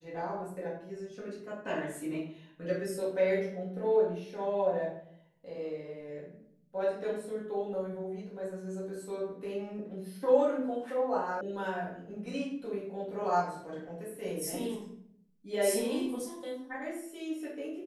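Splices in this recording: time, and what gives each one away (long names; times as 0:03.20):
0:11.41: cut off before it has died away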